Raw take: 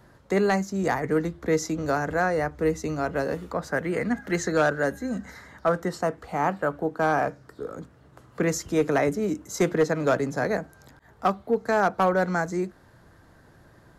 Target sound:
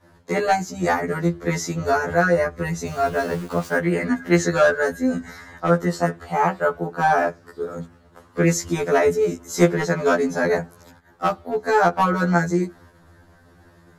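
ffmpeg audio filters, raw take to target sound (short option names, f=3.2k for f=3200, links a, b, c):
-filter_complex "[0:a]asettb=1/sr,asplit=3[a][b][c];[a]atrim=end=2.874[d];[b]atrim=start=2.87:end=3.77,asetpts=PTS-STARTPTS,afade=t=in:d=0.004:c=qsin,afade=t=out:st=0.896:d=0.004:c=qsin,aeval=exprs='val(0)*gte(abs(val(0)),0.0106)':c=same[e];[c]atrim=start=3.766[f];[d][e]acrossfade=d=0.004:c1=hsin:c2=qsin[g];[g][f]acrossfade=d=0.004:c1=qsin:c2=hsin,agate=range=-33dB:threshold=-50dB:ratio=3:detection=peak,afftfilt=real='re*2*eq(mod(b,4),0)':imag='im*2*eq(mod(b,4),0)':win_size=2048:overlap=0.75,volume=7.5dB"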